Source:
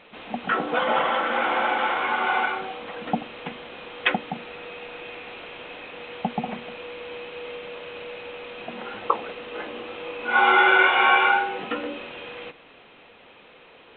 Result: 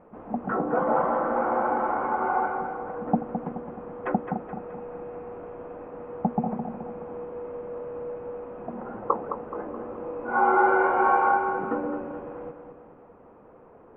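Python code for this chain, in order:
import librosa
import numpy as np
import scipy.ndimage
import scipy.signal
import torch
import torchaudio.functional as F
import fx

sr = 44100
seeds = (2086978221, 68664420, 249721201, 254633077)

p1 = scipy.signal.sosfilt(scipy.signal.butter(4, 1200.0, 'lowpass', fs=sr, output='sos'), x)
p2 = fx.low_shelf(p1, sr, hz=400.0, db=7.0)
p3 = p2 + fx.echo_feedback(p2, sr, ms=213, feedback_pct=48, wet_db=-8, dry=0)
y = p3 * librosa.db_to_amplitude(-2.0)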